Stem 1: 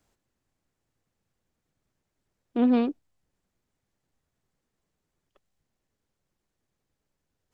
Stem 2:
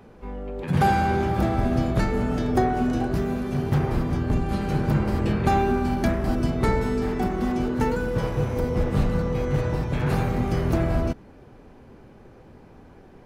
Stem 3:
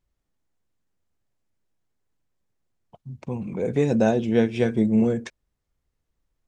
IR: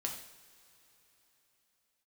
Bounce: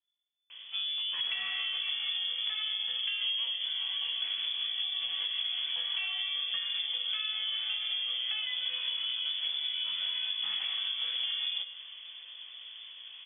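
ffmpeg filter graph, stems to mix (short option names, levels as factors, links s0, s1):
-filter_complex "[0:a]adelay=650,volume=0.501[s0];[1:a]adelay=500,volume=0.596,asplit=2[s1][s2];[s2]volume=0.2[s3];[2:a]asplit=2[s4][s5];[s5]adelay=2.4,afreqshift=-0.74[s6];[s4][s6]amix=inputs=2:normalize=1,volume=0.237[s7];[s1][s7]amix=inputs=2:normalize=0,flanger=delay=17:depth=3:speed=0.69,acompressor=threshold=0.0251:ratio=6,volume=1[s8];[3:a]atrim=start_sample=2205[s9];[s3][s9]afir=irnorm=-1:irlink=0[s10];[s0][s8][s10]amix=inputs=3:normalize=0,acontrast=53,lowpass=f=3000:t=q:w=0.5098,lowpass=f=3000:t=q:w=0.6013,lowpass=f=3000:t=q:w=0.9,lowpass=f=3000:t=q:w=2.563,afreqshift=-3500,acompressor=threshold=0.0282:ratio=6"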